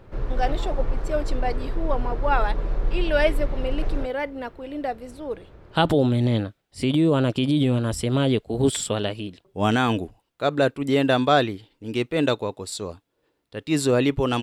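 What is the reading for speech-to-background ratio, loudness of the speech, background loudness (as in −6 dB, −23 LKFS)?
6.5 dB, −24.0 LKFS, −30.5 LKFS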